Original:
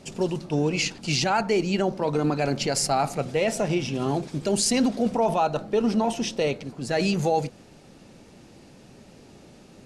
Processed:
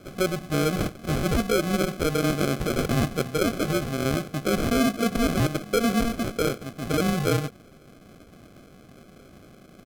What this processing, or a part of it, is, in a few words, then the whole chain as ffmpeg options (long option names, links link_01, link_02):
crushed at another speed: -af "asetrate=55125,aresample=44100,acrusher=samples=38:mix=1:aa=0.000001,asetrate=35280,aresample=44100"